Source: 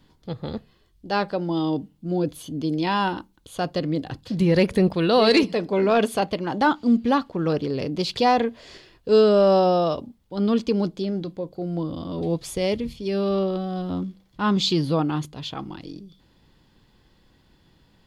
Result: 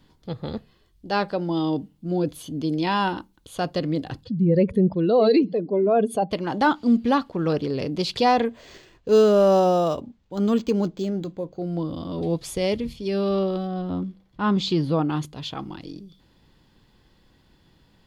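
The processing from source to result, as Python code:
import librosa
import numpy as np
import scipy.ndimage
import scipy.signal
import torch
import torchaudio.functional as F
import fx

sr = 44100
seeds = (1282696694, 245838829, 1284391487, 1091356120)

y = fx.spec_expand(x, sr, power=1.8, at=(4.23, 6.3), fade=0.02)
y = fx.resample_linear(y, sr, factor=4, at=(8.45, 11.59))
y = fx.high_shelf(y, sr, hz=3700.0, db=-10.0, at=(13.67, 15.1))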